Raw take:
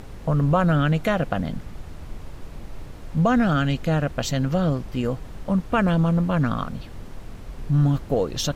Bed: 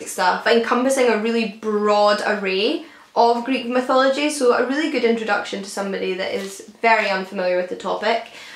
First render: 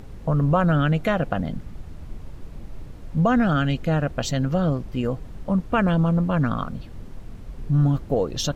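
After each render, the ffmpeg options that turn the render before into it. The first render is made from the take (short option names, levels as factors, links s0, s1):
-af "afftdn=nr=6:nf=-39"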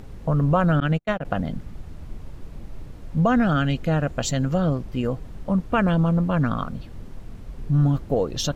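-filter_complex "[0:a]asettb=1/sr,asplit=3[s0][s1][s2];[s0]atrim=end=0.804[s3];[s1]atrim=start=0.8:end=1.25,asetpts=PTS-STARTPTS,afade=t=in:d=0.004:c=qsin,afade=t=out:st=0.446:d=0.004:c=qsin,agate=range=0.00562:threshold=0.0891:ratio=16:release=100:detection=peak[s4];[s2]atrim=start=1.246[s5];[s3][s4]acrossfade=d=0.004:c1=hsin:c2=qsin[s6];[s6][s5]acrossfade=d=0.004:c1=qsin:c2=hsin,asettb=1/sr,asplit=3[s7][s8][s9];[s7]atrim=end=4.034[s10];[s8]atrim=start=4.03:end=4.58,asetpts=PTS-STARTPTS,afade=t=in:d=0.004:c=qsin,afade=t=out:st=0.546:d=0.004:c=qsin,equalizer=f=7100:w=6.1:g=8[s11];[s9]atrim=start=4.576[s12];[s10][s11]acrossfade=d=0.004:c1=hsin:c2=qsin[s13];[s13][s12]acrossfade=d=0.004:c1=qsin:c2=hsin"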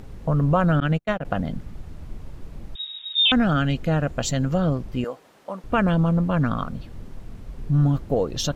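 -filter_complex "[0:a]asettb=1/sr,asplit=3[s0][s1][s2];[s0]atrim=end=2.754[s3];[s1]atrim=start=2.75:end=3.32,asetpts=PTS-STARTPTS,afade=t=in:d=0.004:c=qsin,afade=t=out:st=0.566:d=0.004:c=qsin,lowpass=f=3200:t=q:w=0.5098,lowpass=f=3200:t=q:w=0.6013,lowpass=f=3200:t=q:w=0.9,lowpass=f=3200:t=q:w=2.563,afreqshift=-3800[s4];[s2]atrim=start=3.316[s5];[s3][s4]acrossfade=d=0.004:c1=hsin:c2=qsin[s6];[s6][s5]acrossfade=d=0.004:c1=qsin:c2=hsin,asettb=1/sr,asplit=3[s7][s8][s9];[s7]atrim=end=5.044[s10];[s8]atrim=start=5.04:end=5.64,asetpts=PTS-STARTPTS,afade=t=in:d=0.004:c=qsin,afade=t=out:st=0.596:d=0.004:c=qsin,highpass=520[s11];[s9]atrim=start=5.636[s12];[s10][s11]acrossfade=d=0.004:c1=hsin:c2=qsin[s13];[s13][s12]acrossfade=d=0.004:c1=qsin:c2=hsin"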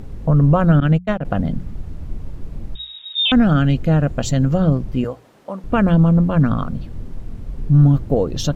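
-af "lowshelf=f=450:g=8.5,bandreject=f=60:t=h:w=6,bandreject=f=120:t=h:w=6,bandreject=f=180:t=h:w=6"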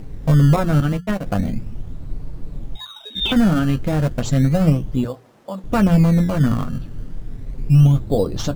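-filter_complex "[0:a]flanger=delay=6.3:depth=4.2:regen=-35:speed=0.42:shape=triangular,asplit=2[s0][s1];[s1]acrusher=samples=20:mix=1:aa=0.000001:lfo=1:lforange=20:lforate=0.33,volume=0.422[s2];[s0][s2]amix=inputs=2:normalize=0"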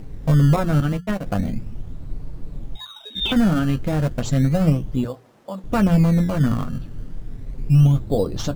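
-af "volume=0.794"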